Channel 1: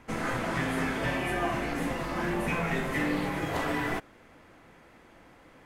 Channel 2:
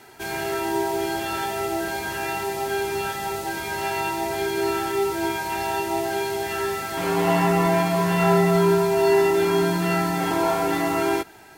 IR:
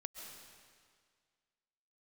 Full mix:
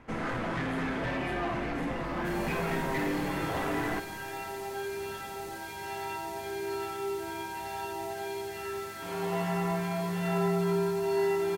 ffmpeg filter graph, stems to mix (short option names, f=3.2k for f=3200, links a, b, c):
-filter_complex "[0:a]lowpass=f=2.6k:p=1,asoftclip=type=tanh:threshold=-27.5dB,volume=-1.5dB,asplit=2[a][b];[b]volume=-5.5dB[c];[1:a]adelay=2050,volume=-13.5dB,asplit=2[d][e];[e]volume=-3dB[f];[2:a]atrim=start_sample=2205[g];[c][g]afir=irnorm=-1:irlink=0[h];[f]aecho=0:1:91:1[i];[a][d][h][i]amix=inputs=4:normalize=0"